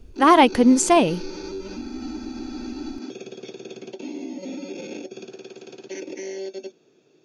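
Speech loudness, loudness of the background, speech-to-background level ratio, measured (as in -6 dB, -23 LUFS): -16.5 LUFS, -35.0 LUFS, 18.5 dB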